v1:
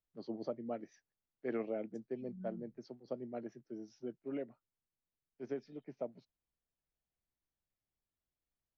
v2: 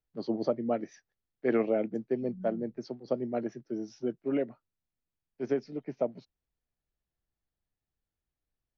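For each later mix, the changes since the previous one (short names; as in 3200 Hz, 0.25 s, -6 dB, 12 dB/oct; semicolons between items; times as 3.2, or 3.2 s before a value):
first voice +11.0 dB; second voice: add low shelf 190 Hz +8.5 dB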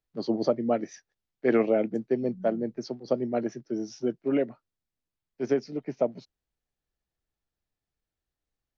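first voice +4.0 dB; master: remove air absorption 100 m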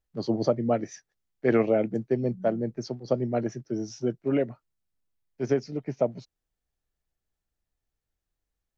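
first voice: remove Chebyshev band-pass 220–4900 Hz, order 2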